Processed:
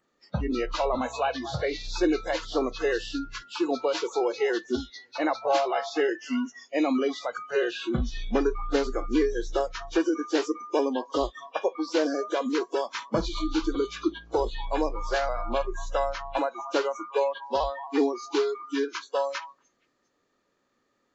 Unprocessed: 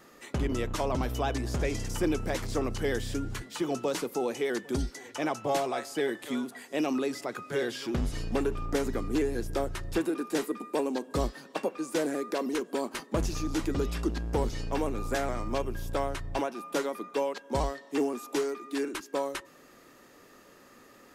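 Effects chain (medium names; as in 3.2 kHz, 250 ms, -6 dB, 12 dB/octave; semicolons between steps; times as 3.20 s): knee-point frequency compression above 1.9 kHz 1.5:1; repeats whose band climbs or falls 234 ms, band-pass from 1 kHz, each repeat 1.4 oct, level -9 dB; spectral noise reduction 23 dB; trim +5 dB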